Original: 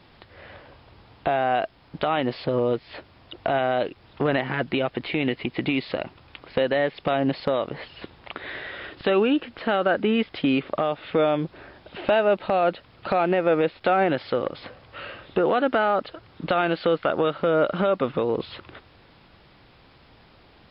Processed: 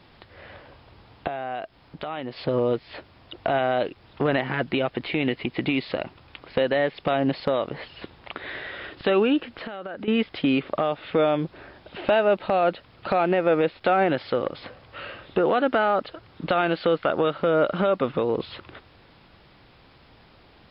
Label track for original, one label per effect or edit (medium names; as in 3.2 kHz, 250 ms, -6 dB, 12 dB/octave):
1.270000	2.370000	compression 1.5:1, threshold -43 dBFS
9.560000	10.080000	compression 16:1, threshold -30 dBFS